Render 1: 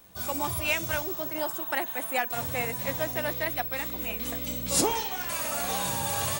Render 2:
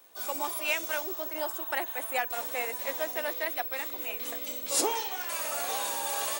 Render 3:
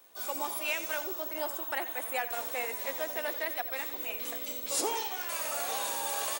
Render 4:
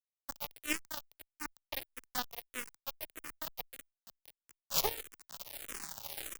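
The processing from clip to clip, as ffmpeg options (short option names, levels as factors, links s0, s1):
-af "highpass=f=330:w=0.5412,highpass=f=330:w=1.3066,volume=0.794"
-filter_complex "[0:a]asplit=2[s0][s1];[s1]alimiter=limit=0.0794:level=0:latency=1:release=126,volume=1[s2];[s0][s2]amix=inputs=2:normalize=0,asplit=4[s3][s4][s5][s6];[s4]adelay=88,afreqshift=-34,volume=0.224[s7];[s5]adelay=176,afreqshift=-68,volume=0.0692[s8];[s6]adelay=264,afreqshift=-102,volume=0.0216[s9];[s3][s7][s8][s9]amix=inputs=4:normalize=0,volume=0.422"
-filter_complex "[0:a]aeval=exprs='0.158*(cos(1*acos(clip(val(0)/0.158,-1,1)))-cos(1*PI/2))+0.00251*(cos(4*acos(clip(val(0)/0.158,-1,1)))-cos(4*PI/2))+0.0355*(cos(7*acos(clip(val(0)/0.158,-1,1)))-cos(7*PI/2))':c=same,acrusher=bits=4:dc=4:mix=0:aa=0.000001,asplit=2[s0][s1];[s1]afreqshift=-1.6[s2];[s0][s2]amix=inputs=2:normalize=1,volume=2.11"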